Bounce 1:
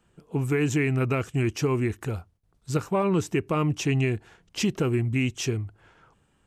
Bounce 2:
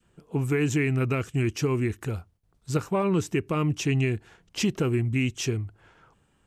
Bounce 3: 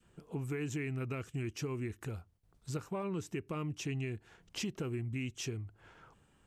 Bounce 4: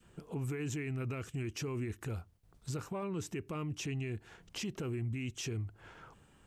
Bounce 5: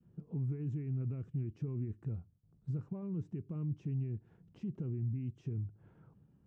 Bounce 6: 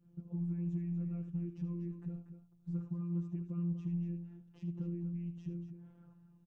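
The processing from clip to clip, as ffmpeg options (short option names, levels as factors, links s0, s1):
-af "adynamicequalizer=threshold=0.00708:dfrequency=780:dqfactor=1.1:tfrequency=780:tqfactor=1.1:attack=5:release=100:ratio=0.375:range=2.5:mode=cutabove:tftype=bell"
-af "acompressor=threshold=0.00708:ratio=2,volume=0.841"
-af "alimiter=level_in=3.76:limit=0.0631:level=0:latency=1:release=24,volume=0.266,volume=1.68"
-af "bandpass=f=150:t=q:w=1.6:csg=0,volume=1.5"
-af "afftfilt=real='hypot(re,im)*cos(PI*b)':imag='0':win_size=1024:overlap=0.75,aeval=exprs='0.0335*(cos(1*acos(clip(val(0)/0.0335,-1,1)))-cos(1*PI/2))+0.000668*(cos(5*acos(clip(val(0)/0.0335,-1,1)))-cos(5*PI/2))':c=same,aecho=1:1:75.8|239.1:0.282|0.316,volume=1.12"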